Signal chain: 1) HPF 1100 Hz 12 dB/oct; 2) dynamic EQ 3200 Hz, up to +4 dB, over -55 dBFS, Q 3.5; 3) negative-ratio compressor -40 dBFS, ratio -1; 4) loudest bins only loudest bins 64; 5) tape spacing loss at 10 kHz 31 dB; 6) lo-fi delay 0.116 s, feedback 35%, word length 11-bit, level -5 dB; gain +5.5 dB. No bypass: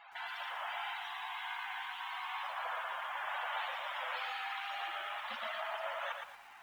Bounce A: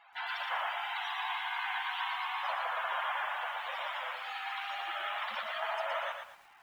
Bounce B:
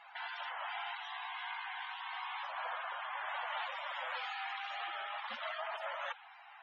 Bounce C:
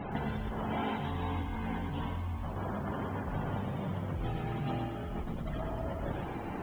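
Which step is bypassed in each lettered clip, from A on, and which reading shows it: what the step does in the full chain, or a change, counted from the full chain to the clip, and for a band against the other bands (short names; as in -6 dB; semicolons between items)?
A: 3, loudness change +4.0 LU; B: 6, loudness change -1.0 LU; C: 1, 500 Hz band +14.5 dB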